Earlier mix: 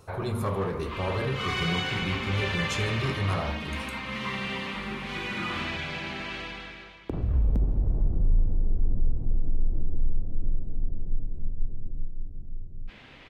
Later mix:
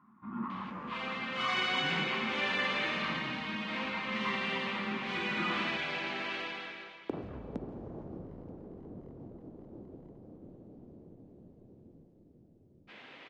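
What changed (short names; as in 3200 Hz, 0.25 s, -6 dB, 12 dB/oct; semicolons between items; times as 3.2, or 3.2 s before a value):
speech: muted; second sound: add HPF 280 Hz 12 dB/oct; master: add air absorption 81 m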